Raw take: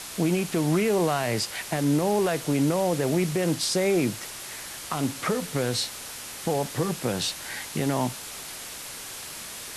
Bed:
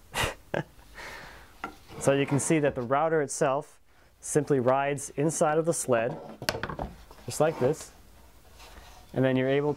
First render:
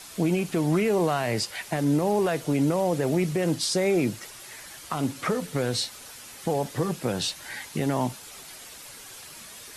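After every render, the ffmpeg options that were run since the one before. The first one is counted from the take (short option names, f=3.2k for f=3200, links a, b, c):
-af "afftdn=nr=8:nf=-39"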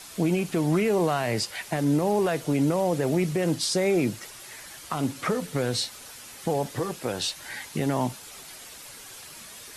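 -filter_complex "[0:a]asettb=1/sr,asplit=3[a][b][c];[a]atrim=end=6.794[d];[b]atrim=start=6.79:end=7.37,asetpts=PTS-STARTPTS,afade=t=in:d=0.004:c=qsin,afade=t=out:st=0.576:d=0.004:c=qsin,equalizer=f=160:w=1.1:g=-8.5[e];[c]atrim=start=7.366[f];[d][e]acrossfade=d=0.004:c1=hsin:c2=qsin[g];[g][f]acrossfade=d=0.004:c1=qsin:c2=hsin"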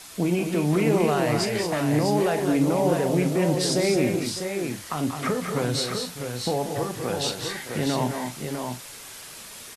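-filter_complex "[0:a]asplit=2[a][b];[b]adelay=40,volume=-11dB[c];[a][c]amix=inputs=2:normalize=0,asplit=2[d][e];[e]aecho=0:1:186|213|610|652:0.316|0.447|0.188|0.501[f];[d][f]amix=inputs=2:normalize=0"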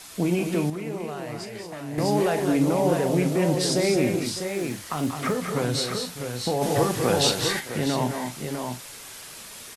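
-filter_complex "[0:a]asettb=1/sr,asplit=3[a][b][c];[a]atrim=end=4.484[d];[b]atrim=start=4.48:end=5.37,asetpts=PTS-STARTPTS,afade=t=in:d=0.004:c=qsin,afade=t=out:st=0.886:d=0.004:c=qsin,acrusher=bits=8:mode=log:mix=0:aa=0.000001[e];[c]atrim=start=5.366[f];[d][e]acrossfade=d=0.004:c1=hsin:c2=qsin[g];[g][f]acrossfade=d=0.004:c1=qsin:c2=hsin,asplit=3[h][i][j];[h]afade=t=out:st=6.61:d=0.02[k];[i]acontrast=53,afade=t=in:st=6.61:d=0.02,afade=t=out:st=7.59:d=0.02[l];[j]afade=t=in:st=7.59:d=0.02[m];[k][l][m]amix=inputs=3:normalize=0,asplit=3[n][o][p];[n]atrim=end=0.7,asetpts=PTS-STARTPTS,afade=t=out:st=0.49:d=0.21:c=log:silence=0.281838[q];[o]atrim=start=0.7:end=1.98,asetpts=PTS-STARTPTS,volume=-11dB[r];[p]atrim=start=1.98,asetpts=PTS-STARTPTS,afade=t=in:d=0.21:c=log:silence=0.281838[s];[q][r][s]concat=n=3:v=0:a=1"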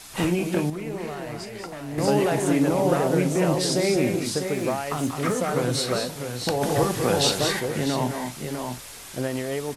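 -filter_complex "[1:a]volume=-3.5dB[a];[0:a][a]amix=inputs=2:normalize=0"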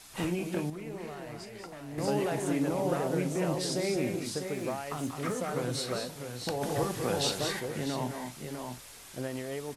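-af "volume=-8.5dB"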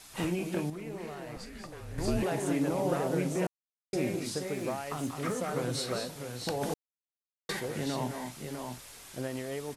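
-filter_complex "[0:a]asettb=1/sr,asplit=3[a][b][c];[a]atrim=end=1.364[d];[b]atrim=start=1.36:end=2.23,asetpts=PTS-STARTPTS,afade=t=in:d=0.004:c=qsin,afade=t=out:st=0.866:d=0.004:c=qsin,afreqshift=-180[e];[c]atrim=start=2.226[f];[d][e]acrossfade=d=0.004:c1=hsin:c2=qsin[g];[g][f]acrossfade=d=0.004:c1=qsin:c2=hsin,asplit=5[h][i][j][k][l];[h]atrim=end=3.47,asetpts=PTS-STARTPTS,afade=t=out:st=3.466:d=0.004:c=hsin[m];[i]atrim=start=3.47:end=3.93,asetpts=PTS-STARTPTS,volume=0[n];[j]atrim=start=3.93:end=6.74,asetpts=PTS-STARTPTS,afade=t=in:d=0.004:c=hsin,afade=t=out:st=2.806:d=0.004:c=hsin[o];[k]atrim=start=6.74:end=7.49,asetpts=PTS-STARTPTS,volume=0[p];[l]atrim=start=7.49,asetpts=PTS-STARTPTS,afade=t=in:d=0.004:c=hsin[q];[m][n][o][p][q]concat=n=5:v=0:a=1"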